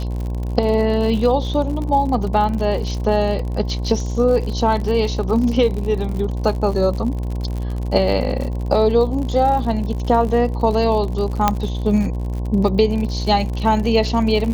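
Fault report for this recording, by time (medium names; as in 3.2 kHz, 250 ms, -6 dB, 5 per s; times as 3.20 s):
buzz 60 Hz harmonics 18 -23 dBFS
crackle 68 per s -26 dBFS
11.48 s: pop -1 dBFS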